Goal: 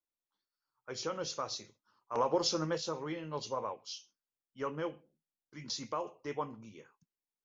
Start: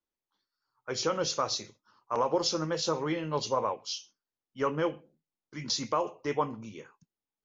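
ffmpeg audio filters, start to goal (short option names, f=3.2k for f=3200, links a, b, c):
-filter_complex "[0:a]asettb=1/sr,asplit=3[a][b][c];[a]atrim=end=2.154[d];[b]atrim=start=2.15:end=2.78,asetpts=PTS-STARTPTS,afade=t=in:d=0.004:c=qsin,afade=t=out:st=0.626:d=0.004:c=qsin,acontrast=37[e];[c]atrim=start=2.776[f];[d][e]acrossfade=d=0.004:c1=hsin:c2=qsin[g];[g][f]acrossfade=d=0.004:c1=qsin:c2=hsin,volume=-8dB"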